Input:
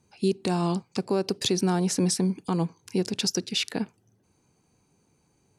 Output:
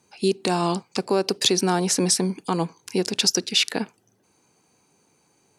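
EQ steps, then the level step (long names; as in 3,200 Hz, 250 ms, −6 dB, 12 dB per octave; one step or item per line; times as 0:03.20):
high-pass filter 430 Hz 6 dB per octave
+7.5 dB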